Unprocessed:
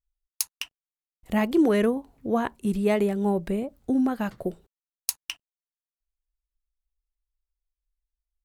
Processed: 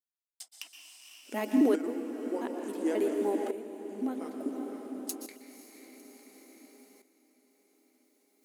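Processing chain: trilling pitch shifter -4.5 st, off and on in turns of 0.134 s; bell 1500 Hz -8 dB 2.8 oct; reverse; upward compressor, threshold -44 dBFS; reverse; diffused feedback echo 0.52 s, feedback 55%, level -8 dB; reverb RT60 1.4 s, pre-delay 0.113 s, DRR 5.5 dB; tremolo saw up 0.57 Hz, depth 70%; brick-wall FIR high-pass 230 Hz

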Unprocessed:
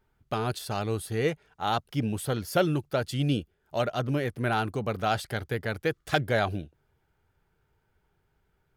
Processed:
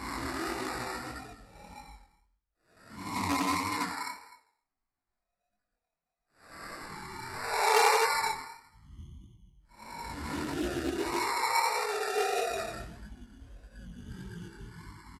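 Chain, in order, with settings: random spectral dropouts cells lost 34%; LPF 8300 Hz 12 dB/oct; tilt shelf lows -9.5 dB, about 740 Hz; Paulstretch 9.1×, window 0.05 s, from 5.65; reverb removal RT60 1.5 s; on a send: echo 0.146 s -19 dB; on the sum: careless resampling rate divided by 8×, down none, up hold; speed mistake 78 rpm record played at 45 rpm; chorus 1.6 Hz, delay 19 ms, depth 7.2 ms; Doppler distortion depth 0.21 ms

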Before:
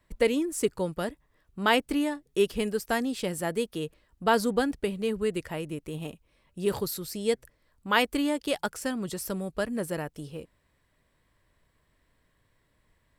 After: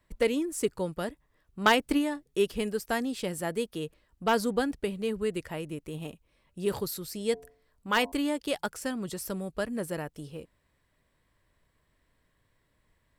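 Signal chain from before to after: one-sided fold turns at -15 dBFS; 1.61–2.24 transient shaper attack +8 dB, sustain +3 dB; 7.1–8.12 de-hum 88.05 Hz, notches 12; gain -2 dB

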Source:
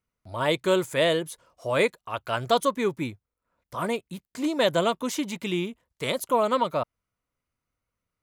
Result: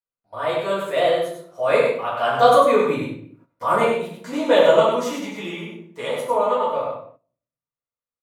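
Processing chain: Doppler pass-by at 3.4, 16 m/s, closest 17 m; low shelf 180 Hz -8.5 dB; on a send: echo 97 ms -5.5 dB; on the sum: shoebox room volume 79 m³, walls mixed, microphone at 1.8 m; gate -49 dBFS, range -12 dB; bell 800 Hz +9.5 dB 2.6 oct; gain -5 dB

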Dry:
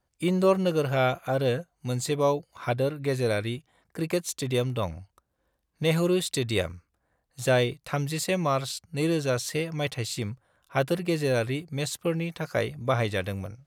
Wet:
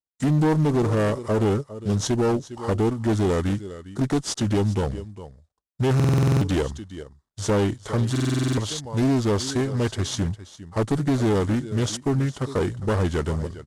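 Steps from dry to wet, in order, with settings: CVSD 64 kbps; dynamic EQ 260 Hz, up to +5 dB, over -39 dBFS, Q 1.5; expander -51 dBFS; pitch shift -3.5 st; bell 2400 Hz -9.5 dB 0.74 oct; echo 0.406 s -17 dB; in parallel at 0 dB: limiter -18.5 dBFS, peak gain reduction 7 dB; on the sum: one-sided clip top -20 dBFS, bottom -14 dBFS; stuck buffer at 5.95/8.11, samples 2048, times 9; Doppler distortion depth 0.3 ms

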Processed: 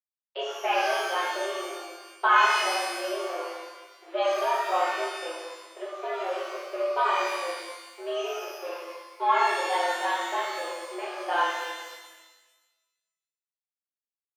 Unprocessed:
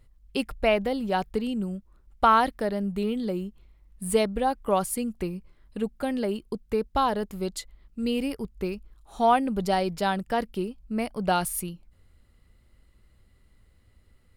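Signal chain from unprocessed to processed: crossover distortion -37 dBFS; mistuned SSB +150 Hz 240–3400 Hz; shimmer reverb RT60 1.2 s, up +12 st, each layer -8 dB, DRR -7.5 dB; gain -7.5 dB

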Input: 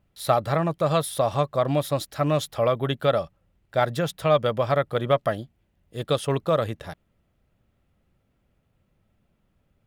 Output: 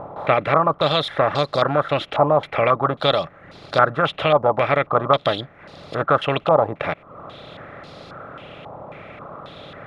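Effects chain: per-bin compression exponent 0.4; reverb removal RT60 0.73 s; stepped low-pass 3.7 Hz 910–4600 Hz; gain -2 dB

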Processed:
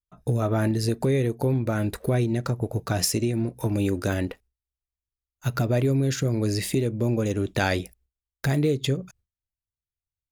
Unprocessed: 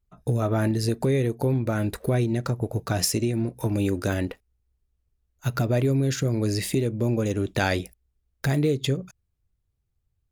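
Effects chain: gate with hold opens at -57 dBFS

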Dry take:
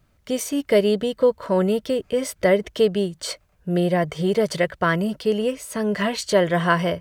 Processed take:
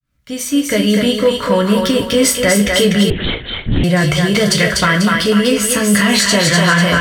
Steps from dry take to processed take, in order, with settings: opening faded in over 1.76 s; band shelf 570 Hz -8 dB; notch 820 Hz, Q 12; in parallel at +1 dB: negative-ratio compressor -31 dBFS; on the sum: thinning echo 0.246 s, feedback 44%, high-pass 460 Hz, level -3 dB; on a send at -2 dB: reverb, pre-delay 3 ms; 3.1–3.84 on the sum: LPC vocoder at 8 kHz whisper; maximiser +8 dB; gain -1 dB

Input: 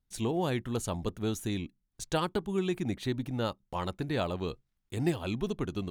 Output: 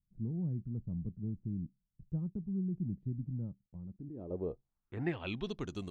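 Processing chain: low-pass sweep 170 Hz -> 8400 Hz, 3.85–5.83; 3.61–4.31 level quantiser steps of 19 dB; gain -6.5 dB

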